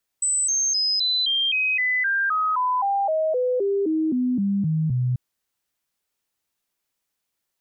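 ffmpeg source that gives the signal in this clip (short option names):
-f lavfi -i "aevalsrc='0.112*clip(min(mod(t,0.26),0.26-mod(t,0.26))/0.005,0,1)*sin(2*PI*8020*pow(2,-floor(t/0.26)/3)*mod(t,0.26))':d=4.94:s=44100"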